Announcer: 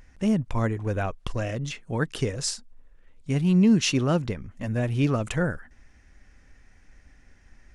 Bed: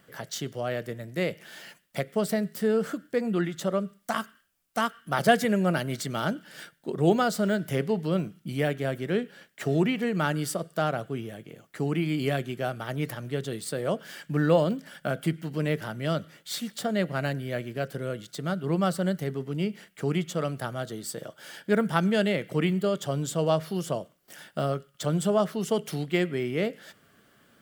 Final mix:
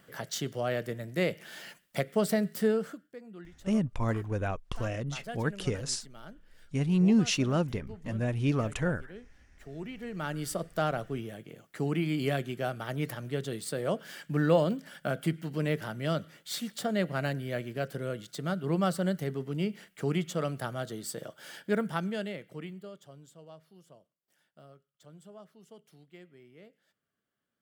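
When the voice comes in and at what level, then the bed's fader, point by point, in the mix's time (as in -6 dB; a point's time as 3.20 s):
3.45 s, -4.5 dB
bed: 2.66 s -0.5 dB
3.20 s -20.5 dB
9.61 s -20.5 dB
10.59 s -2.5 dB
21.55 s -2.5 dB
23.45 s -26.5 dB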